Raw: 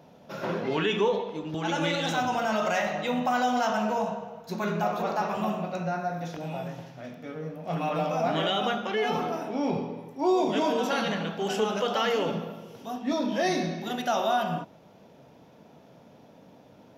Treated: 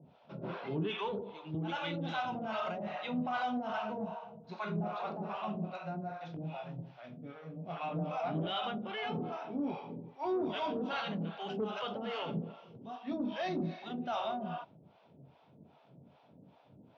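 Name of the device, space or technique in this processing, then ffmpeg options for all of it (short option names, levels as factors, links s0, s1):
guitar amplifier with harmonic tremolo: -filter_complex "[0:a]acrossover=split=560[s0][s1];[s0]aeval=exprs='val(0)*(1-1/2+1/2*cos(2*PI*2.5*n/s))':c=same[s2];[s1]aeval=exprs='val(0)*(1-1/2-1/2*cos(2*PI*2.5*n/s))':c=same[s3];[s2][s3]amix=inputs=2:normalize=0,asoftclip=type=tanh:threshold=0.075,highpass=83,equalizer=f=86:t=q:w=4:g=9,equalizer=f=140:t=q:w=4:g=7,equalizer=f=500:t=q:w=4:g=-4,equalizer=f=1800:t=q:w=4:g=-6,lowpass=f=3900:w=0.5412,lowpass=f=3900:w=1.3066,volume=0.708"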